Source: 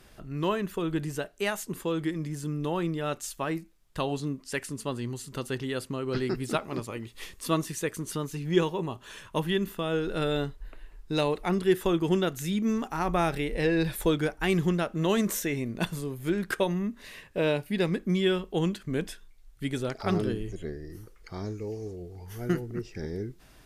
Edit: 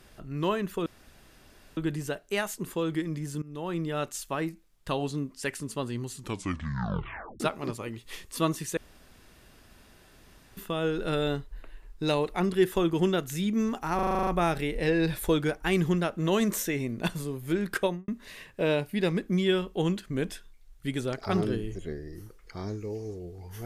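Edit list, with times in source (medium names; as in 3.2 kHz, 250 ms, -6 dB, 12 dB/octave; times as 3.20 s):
0.86 s: insert room tone 0.91 s
2.51–2.95 s: fade in, from -19 dB
5.21 s: tape stop 1.28 s
7.86–9.66 s: room tone
13.04 s: stutter 0.04 s, 9 plays
16.60–16.85 s: studio fade out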